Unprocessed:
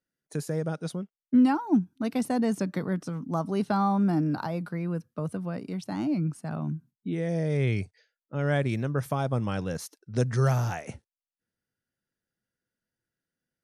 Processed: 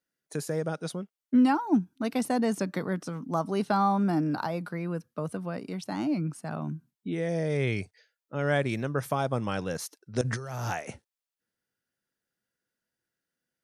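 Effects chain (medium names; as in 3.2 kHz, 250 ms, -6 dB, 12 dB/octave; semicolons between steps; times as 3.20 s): bass shelf 200 Hz -9.5 dB; 10.21–10.73 s: compressor with a negative ratio -36 dBFS, ratio -1; trim +2.5 dB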